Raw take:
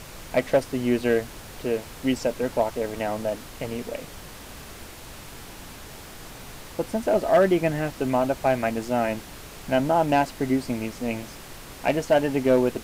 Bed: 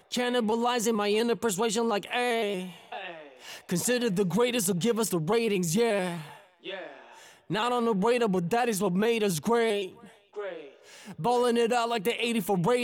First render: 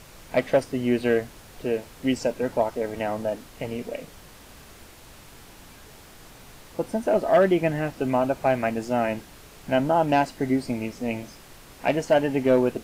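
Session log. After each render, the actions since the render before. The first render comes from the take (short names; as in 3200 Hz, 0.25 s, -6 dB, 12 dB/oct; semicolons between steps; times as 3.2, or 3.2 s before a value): noise print and reduce 6 dB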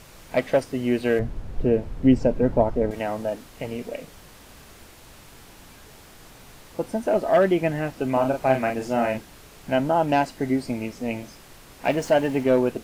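1.19–2.91 tilt -4 dB/oct; 8.12–9.18 doubler 38 ms -5 dB; 11.85–12.44 zero-crossing step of -38.5 dBFS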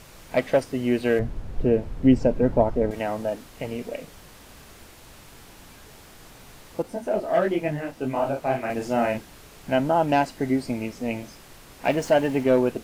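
6.82–8.7 detuned doubles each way 50 cents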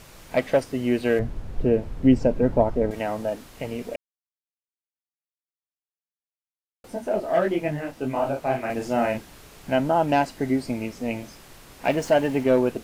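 3.96–6.84 mute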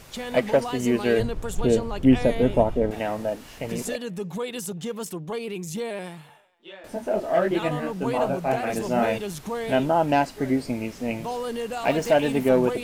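add bed -5.5 dB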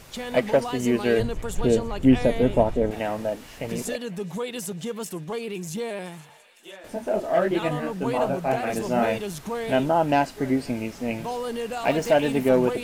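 thin delay 0.509 s, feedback 83%, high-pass 1600 Hz, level -20 dB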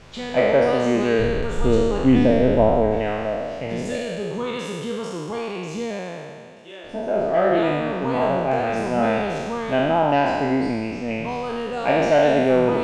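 spectral trails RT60 1.99 s; air absorption 120 m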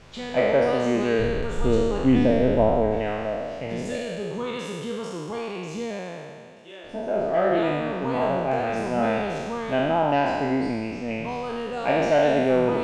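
gain -3 dB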